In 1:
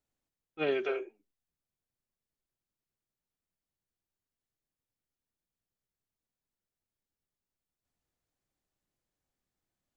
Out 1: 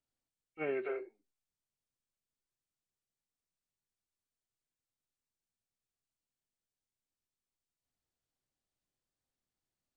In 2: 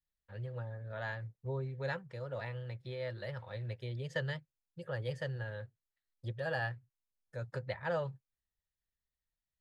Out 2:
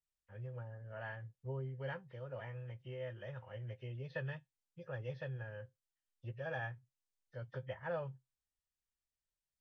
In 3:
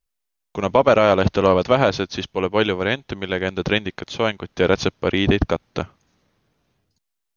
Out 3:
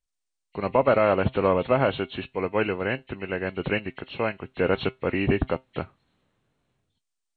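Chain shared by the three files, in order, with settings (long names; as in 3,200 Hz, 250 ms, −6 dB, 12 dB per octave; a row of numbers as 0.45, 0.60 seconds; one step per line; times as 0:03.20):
hearing-aid frequency compression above 1,800 Hz 1.5 to 1
tuned comb filter 130 Hz, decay 0.18 s, harmonics all, mix 40%
level −2.5 dB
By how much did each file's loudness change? −5.5, −5.0, −5.5 LU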